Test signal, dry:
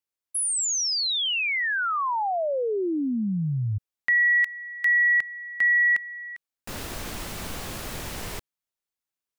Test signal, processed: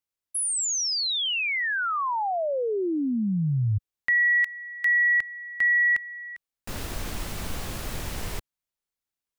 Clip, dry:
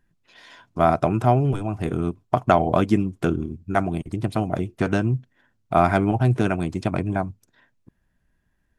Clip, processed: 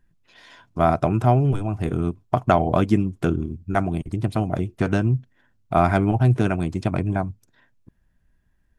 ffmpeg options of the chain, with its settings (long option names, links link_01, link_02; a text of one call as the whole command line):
ffmpeg -i in.wav -af "lowshelf=frequency=110:gain=7.5,volume=-1dB" out.wav